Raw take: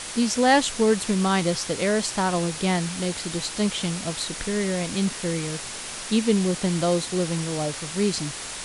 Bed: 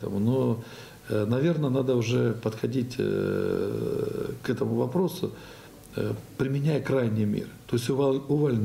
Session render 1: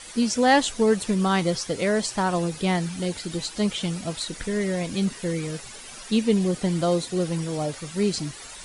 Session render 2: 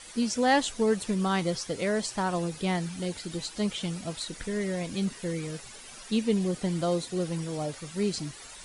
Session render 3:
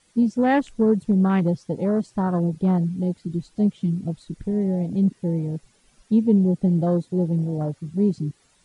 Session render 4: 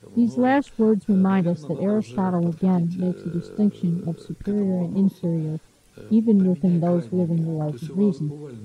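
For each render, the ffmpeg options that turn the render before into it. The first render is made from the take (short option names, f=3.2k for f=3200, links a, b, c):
-af "afftdn=nr=12:nf=-35"
-af "volume=-5dB"
-af "afwtdn=0.0282,equalizer=f=150:t=o:w=2.6:g=11"
-filter_complex "[1:a]volume=-13dB[a];[0:a][a]amix=inputs=2:normalize=0"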